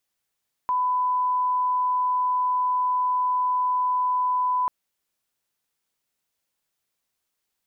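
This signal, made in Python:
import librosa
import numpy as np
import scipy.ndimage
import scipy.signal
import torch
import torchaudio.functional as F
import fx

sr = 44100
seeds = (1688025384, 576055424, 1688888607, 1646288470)

y = fx.lineup_tone(sr, length_s=3.99, level_db=-20.0)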